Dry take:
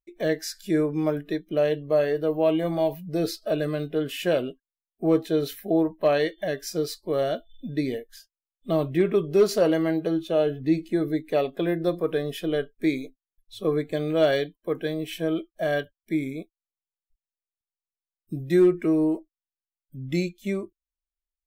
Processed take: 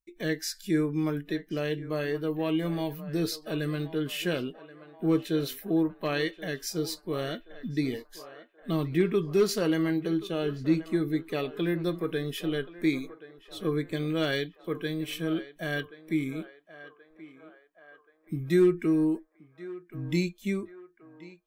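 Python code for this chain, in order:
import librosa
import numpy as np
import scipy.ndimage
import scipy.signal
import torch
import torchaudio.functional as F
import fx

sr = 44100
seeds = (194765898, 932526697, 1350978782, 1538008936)

p1 = fx.peak_eq(x, sr, hz=620.0, db=-13.5, octaves=0.85)
y = p1 + fx.echo_banded(p1, sr, ms=1078, feedback_pct=64, hz=970.0, wet_db=-13, dry=0)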